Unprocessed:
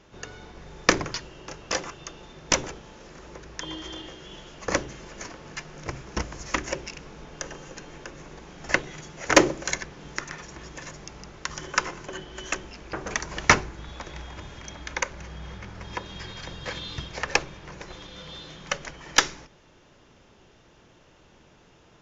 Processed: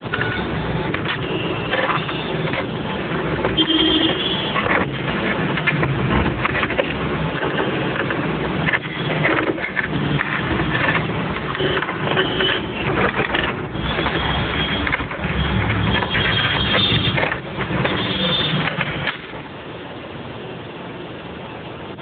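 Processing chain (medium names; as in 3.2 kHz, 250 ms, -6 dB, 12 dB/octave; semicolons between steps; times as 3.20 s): compression 16:1, threshold -34 dBFS, peak gain reduction 25.5 dB; granulator, pitch spread up and down by 0 st; hum notches 50/100/150/200/250/300/350/400/450 Hz; dynamic bell 570 Hz, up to -4 dB, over -53 dBFS, Q 0.71; loudness maximiser +29 dB; AMR-NB 10.2 kbps 8 kHz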